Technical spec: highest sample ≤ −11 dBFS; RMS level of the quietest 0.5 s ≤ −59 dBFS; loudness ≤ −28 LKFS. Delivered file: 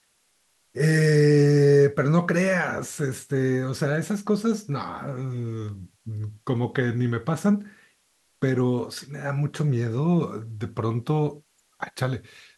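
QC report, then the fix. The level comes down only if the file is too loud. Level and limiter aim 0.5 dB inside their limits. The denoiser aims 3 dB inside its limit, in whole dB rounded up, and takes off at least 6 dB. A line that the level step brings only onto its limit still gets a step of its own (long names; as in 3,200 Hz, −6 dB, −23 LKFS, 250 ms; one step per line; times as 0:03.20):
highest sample −7.5 dBFS: out of spec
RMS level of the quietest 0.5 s −67 dBFS: in spec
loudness −24.0 LKFS: out of spec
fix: level −4.5 dB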